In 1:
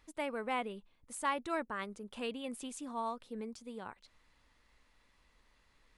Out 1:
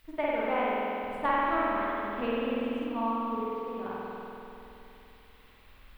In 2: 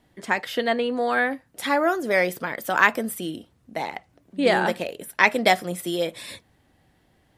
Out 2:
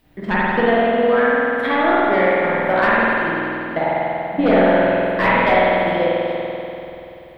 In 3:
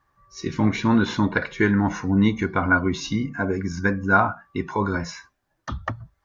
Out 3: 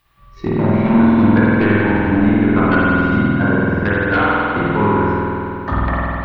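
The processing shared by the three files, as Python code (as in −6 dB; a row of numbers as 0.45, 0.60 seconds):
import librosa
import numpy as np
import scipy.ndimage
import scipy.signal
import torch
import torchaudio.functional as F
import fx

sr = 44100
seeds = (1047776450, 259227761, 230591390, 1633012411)

p1 = fx.spec_trails(x, sr, decay_s=0.78)
p2 = fx.low_shelf(p1, sr, hz=63.0, db=8.0)
p3 = fx.transient(p2, sr, attack_db=10, sustain_db=-10)
p4 = fx.fold_sine(p3, sr, drive_db=16, ceiling_db=8.0)
p5 = p3 + (p4 * librosa.db_to_amplitude(-6.5))
p6 = fx.dmg_noise_colour(p5, sr, seeds[0], colour='violet', level_db=-25.0)
p7 = fx.air_absorb(p6, sr, metres=460.0)
p8 = fx.rev_spring(p7, sr, rt60_s=3.1, pass_ms=(48,), chirp_ms=40, drr_db=-7.0)
y = p8 * librosa.db_to_amplitude(-16.0)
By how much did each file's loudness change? +9.0, +6.5, +7.5 LU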